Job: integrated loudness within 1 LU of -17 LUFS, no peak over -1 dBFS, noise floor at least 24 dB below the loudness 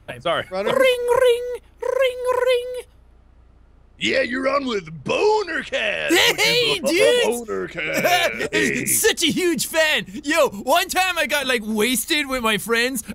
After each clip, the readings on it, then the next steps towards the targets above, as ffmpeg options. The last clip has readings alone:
loudness -19.0 LUFS; peak -5.0 dBFS; loudness target -17.0 LUFS
-> -af "volume=2dB"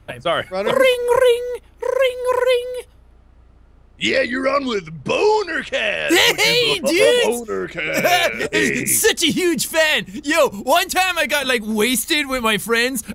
loudness -17.0 LUFS; peak -3.0 dBFS; noise floor -48 dBFS

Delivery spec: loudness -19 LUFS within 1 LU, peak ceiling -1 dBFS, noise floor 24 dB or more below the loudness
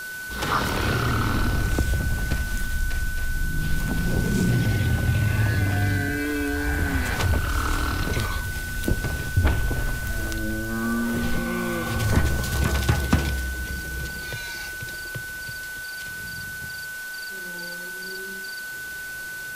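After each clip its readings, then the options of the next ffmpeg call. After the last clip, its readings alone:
steady tone 1500 Hz; tone level -32 dBFS; noise floor -34 dBFS; noise floor target -50 dBFS; loudness -26.0 LUFS; peak -7.0 dBFS; loudness target -19.0 LUFS
-> -af "bandreject=f=1.5k:w=30"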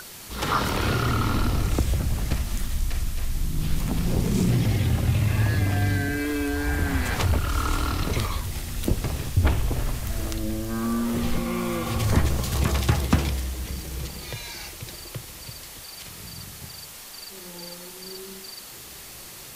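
steady tone none; noise floor -42 dBFS; noise floor target -51 dBFS
-> -af "afftdn=nr=9:nf=-42"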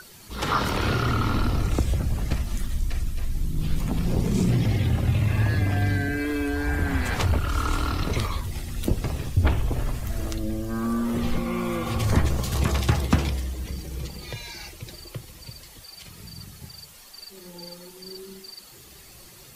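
noise floor -48 dBFS; noise floor target -50 dBFS
-> -af "afftdn=nr=6:nf=-48"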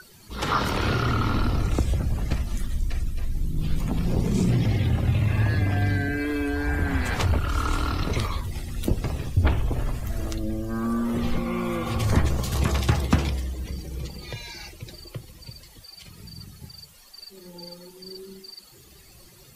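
noise floor -51 dBFS; loudness -26.0 LUFS; peak -7.0 dBFS; loudness target -19.0 LUFS
-> -af "volume=7dB,alimiter=limit=-1dB:level=0:latency=1"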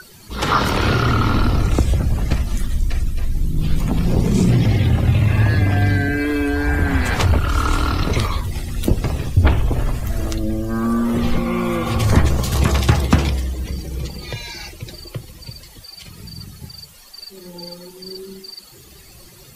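loudness -19.0 LUFS; peak -1.0 dBFS; noise floor -44 dBFS

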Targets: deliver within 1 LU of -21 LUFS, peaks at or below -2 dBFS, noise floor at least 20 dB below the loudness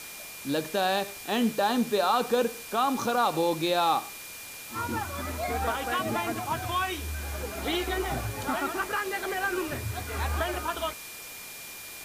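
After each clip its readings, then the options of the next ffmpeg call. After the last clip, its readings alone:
steady tone 2400 Hz; tone level -46 dBFS; noise floor -42 dBFS; noise floor target -49 dBFS; loudness -29.0 LUFS; peak -12.5 dBFS; loudness target -21.0 LUFS
-> -af "bandreject=f=2.4k:w=30"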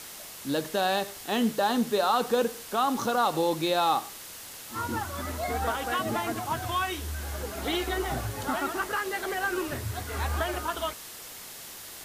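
steady tone none; noise floor -43 dBFS; noise floor target -49 dBFS
-> -af "afftdn=nr=6:nf=-43"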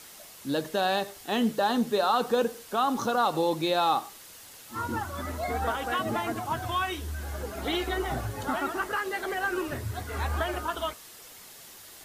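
noise floor -49 dBFS; loudness -29.0 LUFS; peak -13.0 dBFS; loudness target -21.0 LUFS
-> -af "volume=8dB"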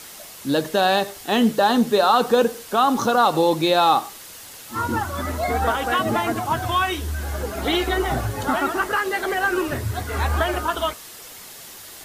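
loudness -21.0 LUFS; peak -5.0 dBFS; noise floor -41 dBFS

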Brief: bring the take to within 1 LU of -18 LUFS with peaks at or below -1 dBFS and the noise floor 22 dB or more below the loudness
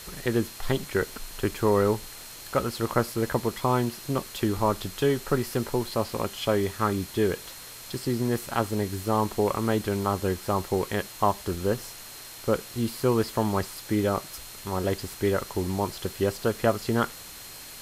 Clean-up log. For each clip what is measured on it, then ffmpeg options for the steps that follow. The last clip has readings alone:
steady tone 4200 Hz; tone level -50 dBFS; noise floor -43 dBFS; noise floor target -50 dBFS; loudness -27.5 LUFS; peak -8.0 dBFS; loudness target -18.0 LUFS
-> -af "bandreject=f=4.2k:w=30"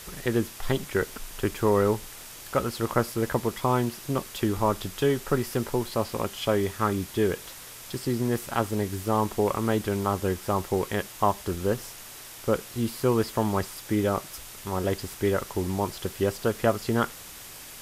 steady tone none; noise floor -44 dBFS; noise floor target -50 dBFS
-> -af "afftdn=nr=6:nf=-44"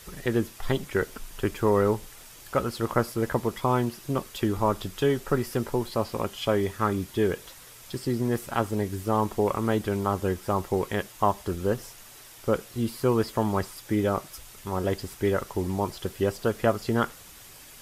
noise floor -48 dBFS; noise floor target -50 dBFS
-> -af "afftdn=nr=6:nf=-48"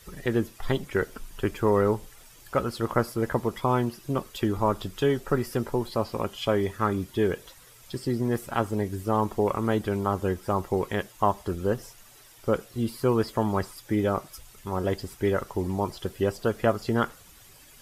noise floor -52 dBFS; loudness -28.0 LUFS; peak -8.0 dBFS; loudness target -18.0 LUFS
-> -af "volume=10dB,alimiter=limit=-1dB:level=0:latency=1"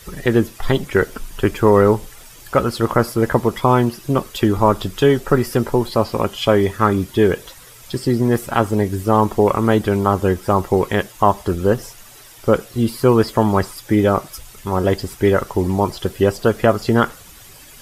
loudness -18.0 LUFS; peak -1.0 dBFS; noise floor -42 dBFS

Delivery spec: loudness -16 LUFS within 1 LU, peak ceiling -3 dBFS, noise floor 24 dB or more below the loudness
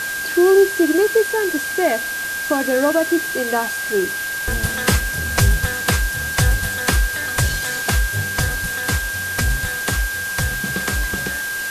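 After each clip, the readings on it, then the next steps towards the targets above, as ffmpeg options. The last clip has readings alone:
steady tone 1600 Hz; tone level -23 dBFS; noise floor -25 dBFS; noise floor target -43 dBFS; loudness -19.0 LUFS; peak -4.5 dBFS; loudness target -16.0 LUFS
-> -af "bandreject=f=1.6k:w=30"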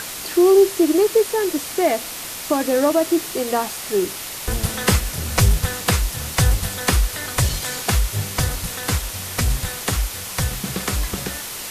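steady tone none; noise floor -31 dBFS; noise floor target -45 dBFS
-> -af "afftdn=nr=14:nf=-31"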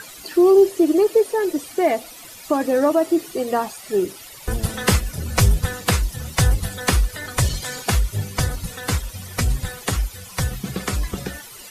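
noise floor -40 dBFS; noise floor target -45 dBFS
-> -af "afftdn=nr=6:nf=-40"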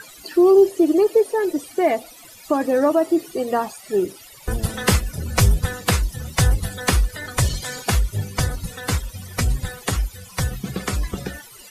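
noise floor -44 dBFS; noise floor target -45 dBFS
-> -af "afftdn=nr=6:nf=-44"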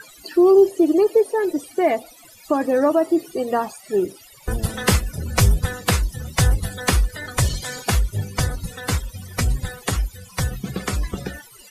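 noise floor -47 dBFS; loudness -21.5 LUFS; peak -5.5 dBFS; loudness target -16.0 LUFS
-> -af "volume=5.5dB,alimiter=limit=-3dB:level=0:latency=1"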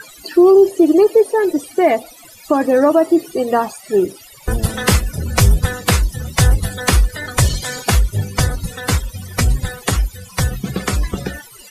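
loudness -16.5 LUFS; peak -3.0 dBFS; noise floor -41 dBFS

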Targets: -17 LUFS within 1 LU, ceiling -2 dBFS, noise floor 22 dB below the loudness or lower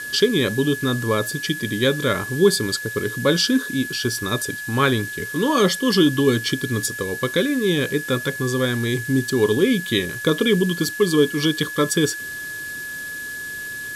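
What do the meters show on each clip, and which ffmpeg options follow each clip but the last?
steady tone 1700 Hz; tone level -29 dBFS; noise floor -31 dBFS; noise floor target -43 dBFS; loudness -21.0 LUFS; peak -4.0 dBFS; loudness target -17.0 LUFS
-> -af "bandreject=f=1.7k:w=30"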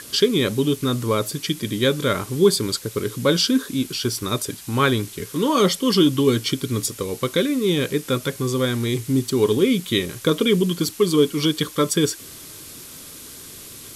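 steady tone none; noise floor -40 dBFS; noise floor target -43 dBFS
-> -af "afftdn=nr=6:nf=-40"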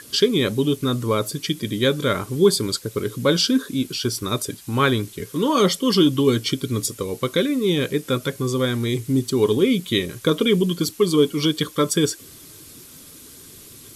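noise floor -44 dBFS; loudness -21.0 LUFS; peak -4.5 dBFS; loudness target -17.0 LUFS
-> -af "volume=4dB,alimiter=limit=-2dB:level=0:latency=1"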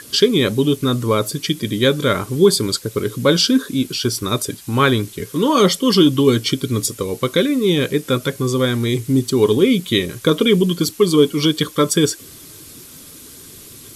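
loudness -17.0 LUFS; peak -2.0 dBFS; noise floor -40 dBFS

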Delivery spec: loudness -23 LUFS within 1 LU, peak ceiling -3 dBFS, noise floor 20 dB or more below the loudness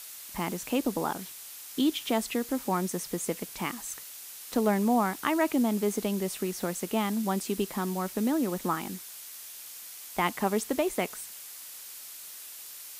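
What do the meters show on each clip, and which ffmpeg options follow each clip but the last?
noise floor -45 dBFS; noise floor target -50 dBFS; loudness -30.0 LUFS; peak -10.5 dBFS; loudness target -23.0 LUFS
-> -af "afftdn=nr=6:nf=-45"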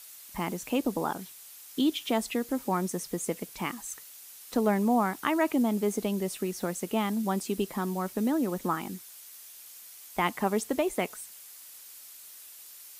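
noise floor -49 dBFS; noise floor target -50 dBFS
-> -af "afftdn=nr=6:nf=-49"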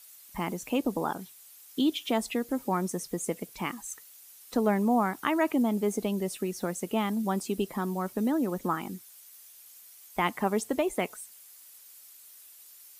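noise floor -53 dBFS; loudness -30.0 LUFS; peak -11.0 dBFS; loudness target -23.0 LUFS
-> -af "volume=7dB"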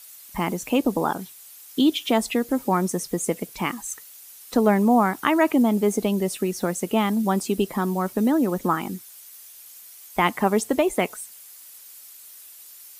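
loudness -23.0 LUFS; peak -4.0 dBFS; noise floor -46 dBFS

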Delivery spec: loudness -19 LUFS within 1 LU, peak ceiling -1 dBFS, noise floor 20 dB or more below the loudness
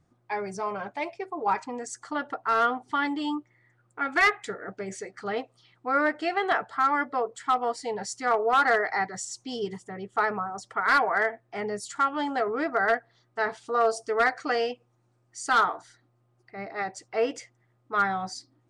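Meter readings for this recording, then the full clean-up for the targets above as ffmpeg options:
loudness -27.5 LUFS; peak -15.0 dBFS; loudness target -19.0 LUFS
-> -af "volume=8.5dB"

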